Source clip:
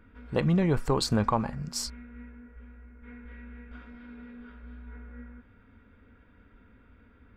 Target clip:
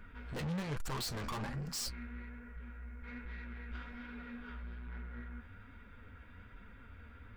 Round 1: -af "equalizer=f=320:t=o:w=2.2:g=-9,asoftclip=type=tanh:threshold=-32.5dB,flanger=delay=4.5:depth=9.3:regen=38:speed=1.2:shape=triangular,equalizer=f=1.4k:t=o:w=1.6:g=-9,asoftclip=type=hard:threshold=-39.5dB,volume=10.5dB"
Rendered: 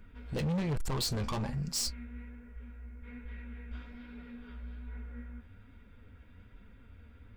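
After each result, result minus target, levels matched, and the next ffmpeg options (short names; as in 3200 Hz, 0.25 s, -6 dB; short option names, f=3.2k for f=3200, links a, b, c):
soft clip: distortion -7 dB; 1000 Hz band -4.0 dB
-af "equalizer=f=320:t=o:w=2.2:g=-9,asoftclip=type=tanh:threshold=-44dB,flanger=delay=4.5:depth=9.3:regen=38:speed=1.2:shape=triangular,equalizer=f=1.4k:t=o:w=1.6:g=-9,asoftclip=type=hard:threshold=-39.5dB,volume=10.5dB"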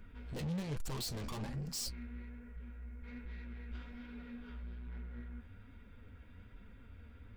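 1000 Hz band -5.5 dB
-af "equalizer=f=320:t=o:w=2.2:g=-9,asoftclip=type=tanh:threshold=-44dB,flanger=delay=4.5:depth=9.3:regen=38:speed=1.2:shape=triangular,asoftclip=type=hard:threshold=-39.5dB,volume=10.5dB"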